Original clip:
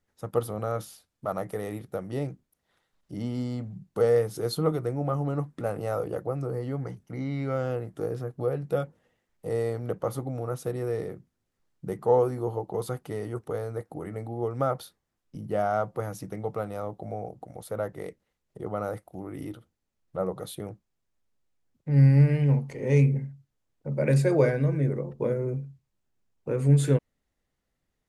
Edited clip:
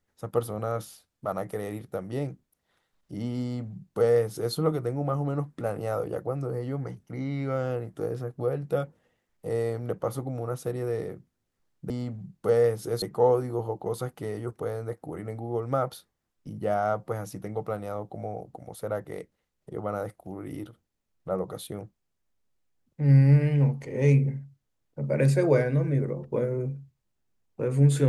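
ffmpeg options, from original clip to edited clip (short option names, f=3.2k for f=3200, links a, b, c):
-filter_complex "[0:a]asplit=3[a][b][c];[a]atrim=end=11.902[d];[b]atrim=start=3.418:end=4.542[e];[c]atrim=start=11.898[f];[d][e]acrossfade=d=0.004:c1=hsin:c2=hsin[g];[g][f]acrossfade=d=0.004:c1=hsin:c2=hsin"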